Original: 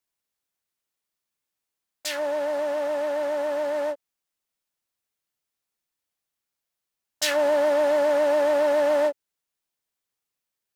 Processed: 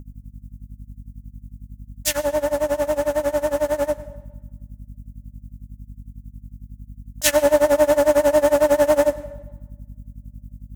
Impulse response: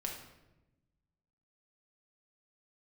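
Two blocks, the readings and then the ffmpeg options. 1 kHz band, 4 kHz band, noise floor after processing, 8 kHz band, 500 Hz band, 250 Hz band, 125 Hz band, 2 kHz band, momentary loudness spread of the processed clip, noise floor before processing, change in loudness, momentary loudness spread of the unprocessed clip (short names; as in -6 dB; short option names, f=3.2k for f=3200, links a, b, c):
+3.5 dB, +2.5 dB, -50 dBFS, +9.5 dB, +4.5 dB, +7.5 dB, n/a, +3.0 dB, 9 LU, -85 dBFS, +4.5 dB, 9 LU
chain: -filter_complex "[0:a]lowshelf=f=350:g=8,aeval=exprs='val(0)+0.01*(sin(2*PI*50*n/s)+sin(2*PI*2*50*n/s)/2+sin(2*PI*3*50*n/s)/3+sin(2*PI*4*50*n/s)/4+sin(2*PI*5*50*n/s)/5)':c=same,aexciter=amount=2.9:drive=7:freq=6k,tremolo=f=11:d=0.94,asplit=2[a][b];[1:a]atrim=start_sample=2205,asetrate=32634,aresample=44100,adelay=102[c];[b][c]afir=irnorm=-1:irlink=0,volume=-18dB[d];[a][d]amix=inputs=2:normalize=0,volume=6.5dB"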